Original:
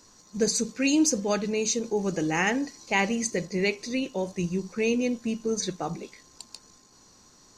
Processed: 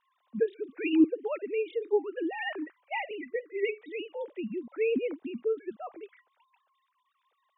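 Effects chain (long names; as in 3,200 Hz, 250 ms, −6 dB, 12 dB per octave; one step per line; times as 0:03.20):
three sine waves on the formant tracks
0:01.04–0:03.11: Chebyshev high-pass filter 320 Hz, order 3
level −4 dB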